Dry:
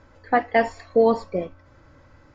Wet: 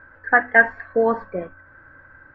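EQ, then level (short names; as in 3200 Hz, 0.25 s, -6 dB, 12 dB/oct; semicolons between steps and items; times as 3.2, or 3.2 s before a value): synth low-pass 1600 Hz, resonance Q 13; notches 50/100/150/200/250 Hz; -2.5 dB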